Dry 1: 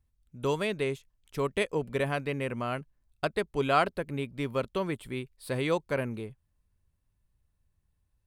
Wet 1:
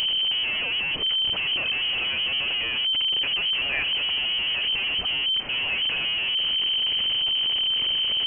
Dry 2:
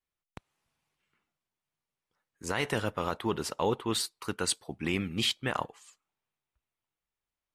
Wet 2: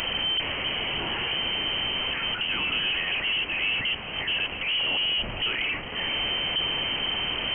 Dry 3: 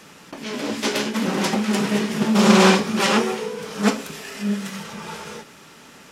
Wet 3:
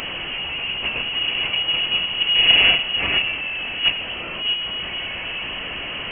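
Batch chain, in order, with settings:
linear delta modulator 32 kbit/s, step −19 dBFS
parametric band 1,600 Hz −8 dB 1.5 octaves
voice inversion scrambler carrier 3,100 Hz

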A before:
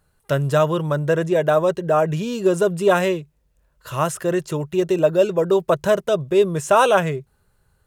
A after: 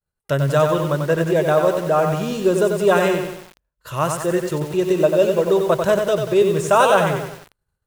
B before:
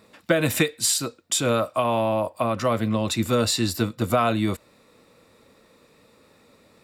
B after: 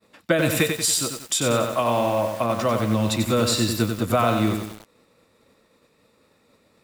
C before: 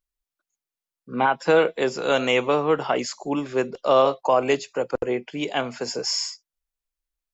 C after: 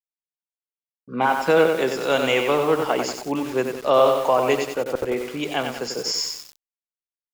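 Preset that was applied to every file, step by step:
downward expander −51 dBFS
feedback echo at a low word length 93 ms, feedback 55%, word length 6 bits, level −5 dB

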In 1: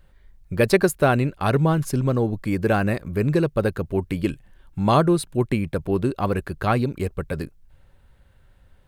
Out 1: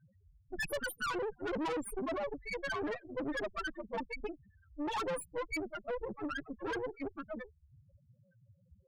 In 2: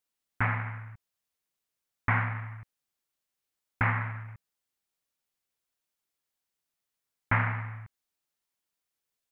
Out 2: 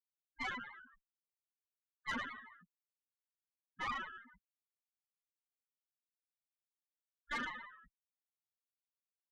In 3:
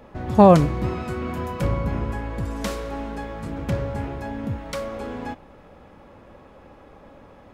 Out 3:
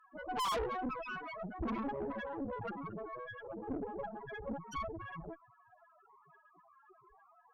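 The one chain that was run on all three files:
gate on every frequency bin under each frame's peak −10 dB weak
high-shelf EQ 9,000 Hz +9.5 dB
spectral peaks only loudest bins 2
tube saturation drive 43 dB, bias 0.8
level +10 dB

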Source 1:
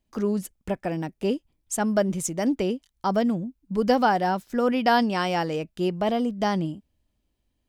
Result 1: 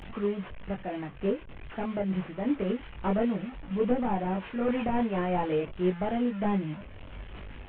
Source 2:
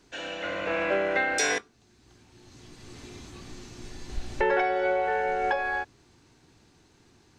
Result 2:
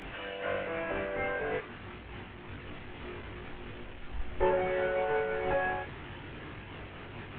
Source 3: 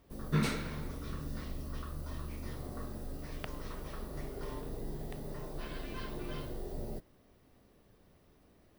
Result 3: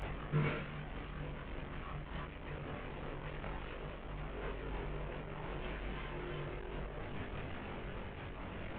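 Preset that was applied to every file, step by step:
linear delta modulator 16 kbit/s, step −34.5 dBFS
multi-voice chorus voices 4, 0.27 Hz, delay 21 ms, depth 1.3 ms
amplitude modulation by smooth noise, depth 55%
level +2 dB

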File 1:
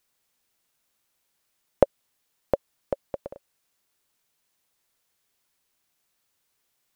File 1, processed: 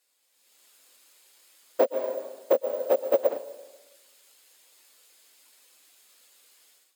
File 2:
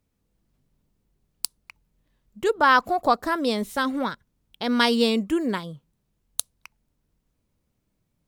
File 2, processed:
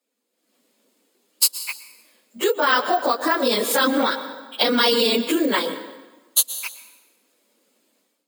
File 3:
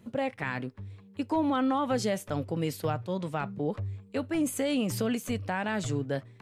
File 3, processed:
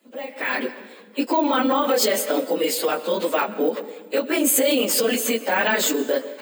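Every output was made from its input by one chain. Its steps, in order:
random phases in long frames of 50 ms
dense smooth reverb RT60 1.2 s, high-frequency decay 0.8×, pre-delay 100 ms, DRR 16.5 dB
downward compressor 6 to 1, threshold −26 dBFS
parametric band 520 Hz +6.5 dB 0.43 octaves
brickwall limiter −22 dBFS
Butterworth high-pass 230 Hz 48 dB per octave
bad sample-rate conversion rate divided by 2×, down filtered, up hold
notch filter 5,800 Hz, Q 8.3
automatic gain control gain up to 14.5 dB
high-shelf EQ 2,100 Hz +11 dB
level −4.5 dB

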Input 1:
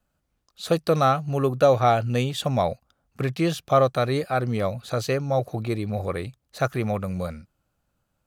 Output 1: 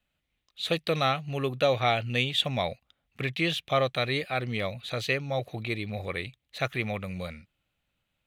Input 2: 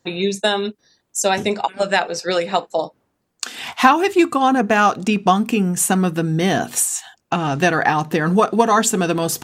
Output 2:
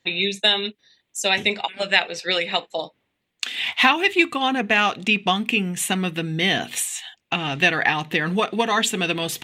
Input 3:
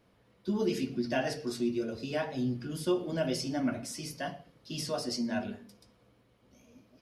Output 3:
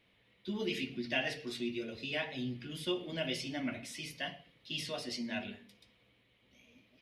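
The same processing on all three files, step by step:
flat-topped bell 2,700 Hz +13.5 dB 1.3 octaves
level −7 dB

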